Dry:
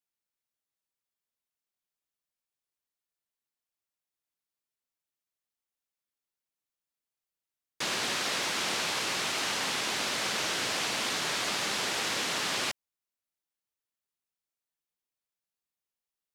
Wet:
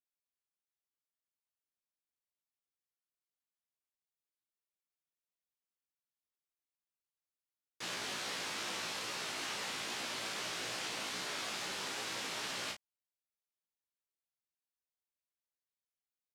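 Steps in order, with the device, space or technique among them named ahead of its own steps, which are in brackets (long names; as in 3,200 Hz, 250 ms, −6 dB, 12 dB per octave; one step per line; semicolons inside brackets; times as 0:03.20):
double-tracked vocal (double-tracking delay 34 ms −4.5 dB; chorus effect 2.4 Hz, delay 15.5 ms, depth 3.7 ms)
level −7.5 dB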